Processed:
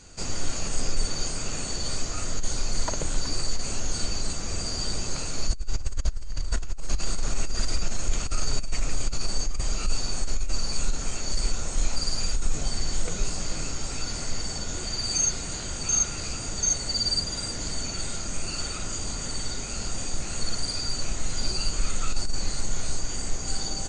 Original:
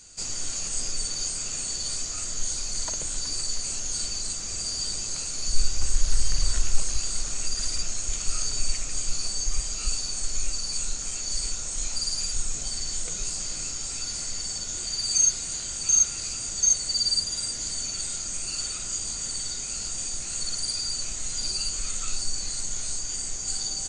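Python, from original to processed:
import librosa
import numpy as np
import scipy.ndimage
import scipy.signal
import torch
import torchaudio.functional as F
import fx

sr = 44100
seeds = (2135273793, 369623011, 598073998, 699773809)

y = fx.lowpass(x, sr, hz=1300.0, slope=6)
y = fx.over_compress(y, sr, threshold_db=-26.0, ratio=-1.0)
y = y * librosa.db_to_amplitude(6.5)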